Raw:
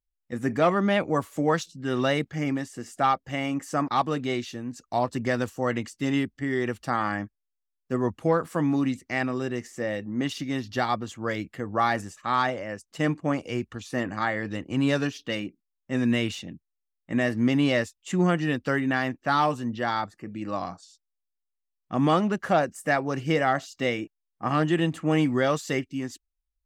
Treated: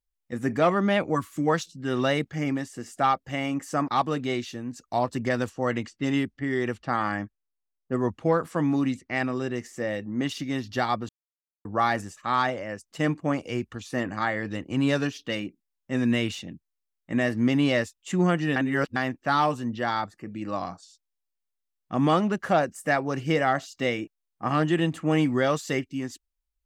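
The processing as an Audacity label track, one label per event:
1.160000	1.470000	time-frequency box 380–980 Hz -14 dB
5.290000	9.560000	level-controlled noise filter closes to 920 Hz, open at -22.5 dBFS
11.090000	11.650000	mute
18.560000	18.960000	reverse

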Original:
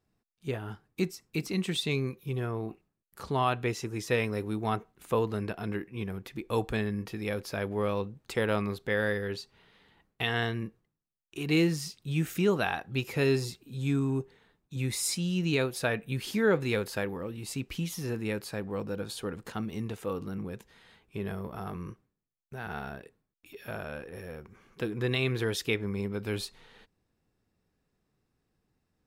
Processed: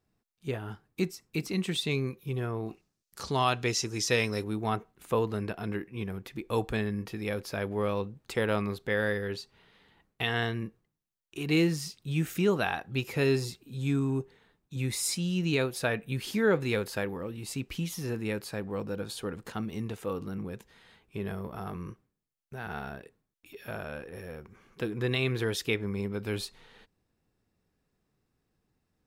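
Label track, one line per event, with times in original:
2.660000	4.440000	peaking EQ 5.6 kHz +13 dB 1.4 oct

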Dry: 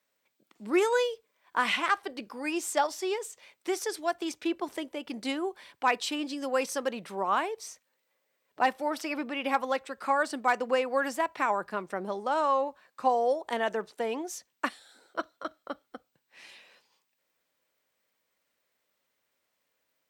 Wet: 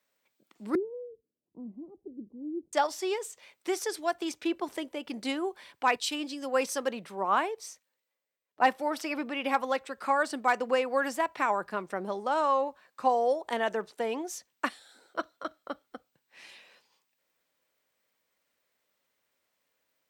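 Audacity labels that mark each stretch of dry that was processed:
0.750000	2.730000	inverse Chebyshev low-pass stop band from 1.5 kHz, stop band 70 dB
5.960000	8.760000	three bands expanded up and down depth 40%

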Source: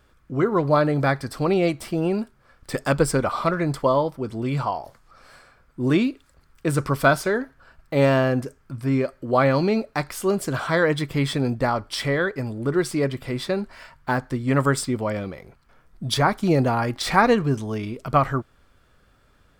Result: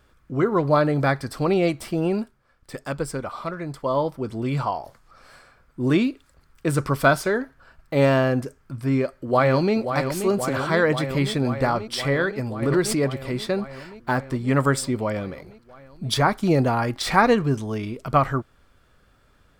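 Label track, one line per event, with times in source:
2.190000	4.050000	dip -8 dB, fades 0.23 s
8.750000	9.750000	echo throw 530 ms, feedback 80%, level -8 dB
12.620000	13.050000	swell ahead of each attack at most 47 dB/s

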